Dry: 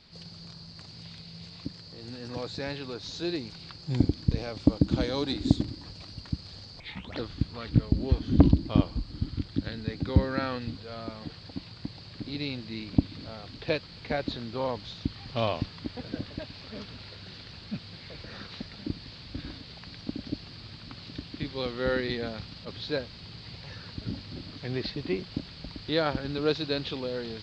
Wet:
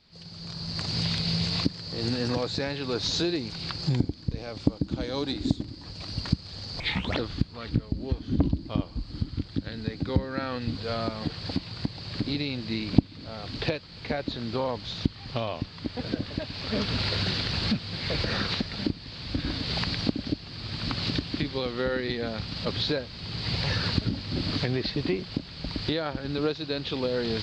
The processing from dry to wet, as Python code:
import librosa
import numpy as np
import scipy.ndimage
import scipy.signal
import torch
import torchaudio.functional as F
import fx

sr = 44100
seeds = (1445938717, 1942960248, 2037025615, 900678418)

y = fx.recorder_agc(x, sr, target_db=-12.0, rise_db_per_s=27.0, max_gain_db=30)
y = F.gain(torch.from_numpy(y), -6.0).numpy()